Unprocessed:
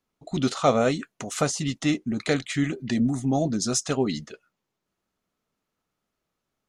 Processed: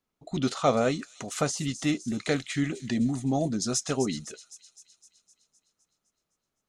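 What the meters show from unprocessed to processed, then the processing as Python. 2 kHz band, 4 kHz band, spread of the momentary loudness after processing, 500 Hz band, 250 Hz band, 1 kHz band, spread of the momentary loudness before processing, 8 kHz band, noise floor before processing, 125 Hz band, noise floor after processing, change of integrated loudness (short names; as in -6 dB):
-3.0 dB, -2.5 dB, 11 LU, -3.0 dB, -3.0 dB, -3.0 dB, 6 LU, -2.5 dB, -83 dBFS, -3.0 dB, -84 dBFS, -3.0 dB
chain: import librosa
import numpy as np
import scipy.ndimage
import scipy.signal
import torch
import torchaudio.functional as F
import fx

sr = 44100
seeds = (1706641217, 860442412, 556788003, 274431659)

y = fx.echo_wet_highpass(x, sr, ms=256, feedback_pct=59, hz=5500.0, wet_db=-8)
y = F.gain(torch.from_numpy(y), -3.0).numpy()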